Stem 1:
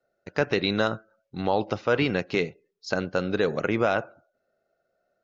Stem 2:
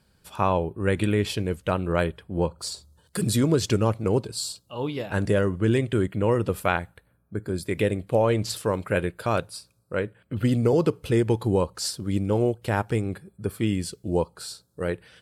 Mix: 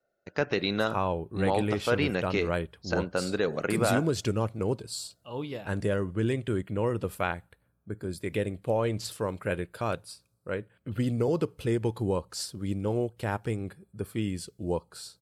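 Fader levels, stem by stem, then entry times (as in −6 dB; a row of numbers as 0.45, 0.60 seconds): −3.5, −6.0 decibels; 0.00, 0.55 seconds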